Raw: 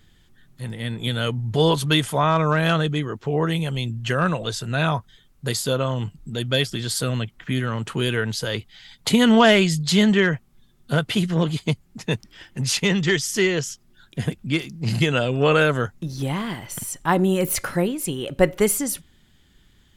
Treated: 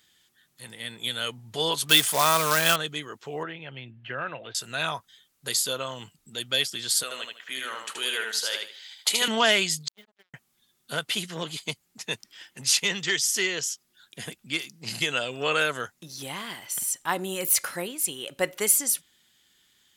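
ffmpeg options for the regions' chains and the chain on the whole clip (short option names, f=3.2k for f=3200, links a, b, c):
-filter_complex "[0:a]asettb=1/sr,asplit=3[a][b][c];[a]atrim=end=1.894[d];[b]atrim=start=1.89:end=2.76,asetpts=PTS-STARTPTS,afade=t=in:d=0.004:c=qsin,afade=t=out:st=0.866:d=0.004:c=qsin,acontrast=21,acrusher=bits=3:mode=log:mix=0:aa=0.000001[e];[c]atrim=start=2.756[f];[d][e]acrossfade=d=0.004:c1=hsin:c2=qsin[g];[g][f]acrossfade=d=0.004:c1=qsin:c2=hsin,asettb=1/sr,asplit=3[h][i][j];[h]atrim=end=3.434[k];[i]atrim=start=3.43:end=4.55,asetpts=PTS-STARTPTS,afade=t=in:d=0.004:c=qsin,afade=t=out:st=1.116:d=0.004:c=qsin,deesser=0.95,highpass=100,equalizer=f=130:t=q:w=4:g=5,equalizer=f=180:t=q:w=4:g=-9,equalizer=f=450:t=q:w=4:g=-4,equalizer=f=1.1k:t=q:w=4:g=-7,lowpass=f=2.7k:w=0.5412,lowpass=f=2.7k:w=1.3066[l];[j]atrim=start=4.546[m];[k][l]acrossfade=d=0.004:c1=hsin:c2=qsin[n];[n][m]acrossfade=d=0.004:c1=qsin:c2=hsin,asettb=1/sr,asplit=3[o][p][q];[o]atrim=end=7.034[r];[p]atrim=start=7.03:end=9.28,asetpts=PTS-STARTPTS,afade=t=in:d=0.004:c=qsin,afade=t=out:st=2.246:d=0.004:c=qsin,highpass=460,aecho=1:1:77|154|231|308:0.631|0.164|0.0427|0.0111,atrim=end_sample=99225[s];[q]atrim=start=9.276[t];[r][s]acrossfade=d=0.004:c1=hsin:c2=qsin[u];[u][t]acrossfade=d=0.004:c1=qsin:c2=hsin,asettb=1/sr,asplit=3[v][w][x];[v]atrim=end=9.884[y];[w]atrim=start=9.88:end=10.34,asetpts=PTS-STARTPTS,afade=t=in:d=0.004:c=qsin,afade=t=out:st=0.456:d=0.004:c=qsin,agate=range=-41dB:threshold=-12dB:ratio=16:release=100:detection=peak,acrusher=bits=7:mix=0:aa=0.5,equalizer=f=8.2k:t=o:w=1.6:g=-14.5[z];[x]atrim=start=10.336[aa];[y][z]acrossfade=d=0.004:c1=hsin:c2=qsin[ab];[ab][aa]acrossfade=d=0.004:c1=qsin:c2=hsin,highpass=f=640:p=1,highshelf=f=2.8k:g=10,volume=-6dB"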